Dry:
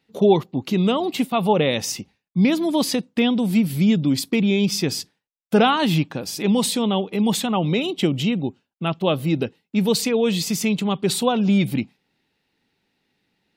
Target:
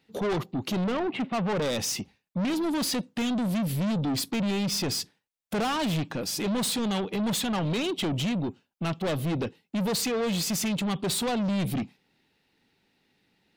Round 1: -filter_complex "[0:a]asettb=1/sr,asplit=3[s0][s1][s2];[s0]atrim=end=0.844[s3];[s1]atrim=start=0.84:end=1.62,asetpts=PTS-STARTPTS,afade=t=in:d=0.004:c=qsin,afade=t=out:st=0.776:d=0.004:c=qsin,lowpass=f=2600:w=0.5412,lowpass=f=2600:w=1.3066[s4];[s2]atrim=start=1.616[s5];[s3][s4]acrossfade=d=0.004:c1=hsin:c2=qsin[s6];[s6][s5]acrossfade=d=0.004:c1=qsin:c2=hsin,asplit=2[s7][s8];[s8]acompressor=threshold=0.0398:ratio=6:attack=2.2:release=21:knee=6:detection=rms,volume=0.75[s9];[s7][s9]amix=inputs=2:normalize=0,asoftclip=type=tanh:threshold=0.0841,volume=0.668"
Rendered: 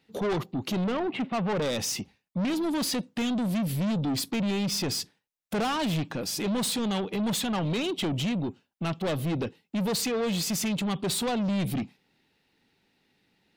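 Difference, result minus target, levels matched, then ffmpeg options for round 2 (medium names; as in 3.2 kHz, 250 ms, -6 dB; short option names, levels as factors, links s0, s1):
compression: peak gain reduction +7 dB
-filter_complex "[0:a]asettb=1/sr,asplit=3[s0][s1][s2];[s0]atrim=end=0.844[s3];[s1]atrim=start=0.84:end=1.62,asetpts=PTS-STARTPTS,afade=t=in:d=0.004:c=qsin,afade=t=out:st=0.776:d=0.004:c=qsin,lowpass=f=2600:w=0.5412,lowpass=f=2600:w=1.3066[s4];[s2]atrim=start=1.616[s5];[s3][s4]acrossfade=d=0.004:c1=hsin:c2=qsin[s6];[s6][s5]acrossfade=d=0.004:c1=qsin:c2=hsin,asplit=2[s7][s8];[s8]acompressor=threshold=0.106:ratio=6:attack=2.2:release=21:knee=6:detection=rms,volume=0.75[s9];[s7][s9]amix=inputs=2:normalize=0,asoftclip=type=tanh:threshold=0.0841,volume=0.668"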